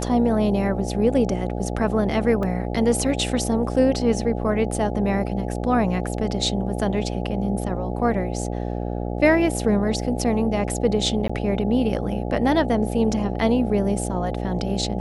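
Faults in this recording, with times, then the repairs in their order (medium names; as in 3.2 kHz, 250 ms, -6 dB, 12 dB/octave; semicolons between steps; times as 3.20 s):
buzz 60 Hz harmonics 14 -27 dBFS
2.43 s: dropout 2.6 ms
11.28–11.29 s: dropout 15 ms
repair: de-hum 60 Hz, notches 14; interpolate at 2.43 s, 2.6 ms; interpolate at 11.28 s, 15 ms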